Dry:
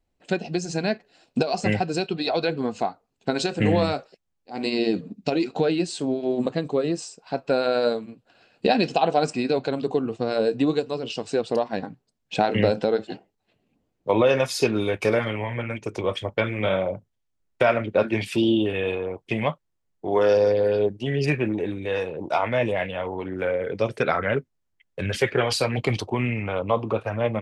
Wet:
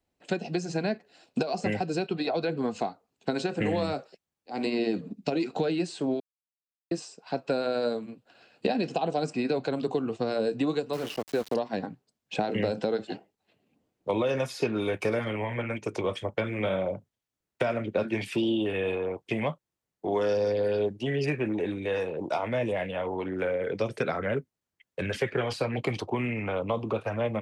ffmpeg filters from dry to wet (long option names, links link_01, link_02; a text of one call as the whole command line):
ffmpeg -i in.wav -filter_complex "[0:a]asettb=1/sr,asplit=3[link_01][link_02][link_03];[link_01]atrim=end=10.934[link_04];[link_02]atrim=start=10.93:end=11.54,asetpts=PTS-STARTPTS,afade=type=in:duration=0.004:curve=qsin,afade=type=out:start_time=0.606:duration=0.004:curve=qsin,aeval=exprs='val(0)*gte(abs(val(0)),0.0211)':channel_layout=same[link_05];[link_03]atrim=start=11.536[link_06];[link_04][link_05]acrossfade=duration=0.004:curve1=hsin:curve2=qsin[link_07];[link_07][link_06]acrossfade=duration=0.004:curve1=qsin:curve2=hsin,asplit=3[link_08][link_09][link_10];[link_08]atrim=end=6.2,asetpts=PTS-STARTPTS,afade=type=out:start_time=6.196:duration=0.004:curve=hsin[link_11];[link_09]atrim=start=6.2:end=6.91,asetpts=PTS-STARTPTS,volume=0[link_12];[link_10]atrim=start=6.91,asetpts=PTS-STARTPTS,afade=type=in:duration=0.004:curve=hsin[link_13];[link_11][link_12][link_13]concat=n=3:v=0:a=1,acrossover=split=260|600|2500|5500[link_14][link_15][link_16][link_17][link_18];[link_14]acompressor=threshold=-29dB:ratio=4[link_19];[link_15]acompressor=threshold=-30dB:ratio=4[link_20];[link_16]acompressor=threshold=-34dB:ratio=4[link_21];[link_17]acompressor=threshold=-47dB:ratio=4[link_22];[link_18]acompressor=threshold=-50dB:ratio=4[link_23];[link_19][link_20][link_21][link_22][link_23]amix=inputs=5:normalize=0,highpass=frequency=130:poles=1" out.wav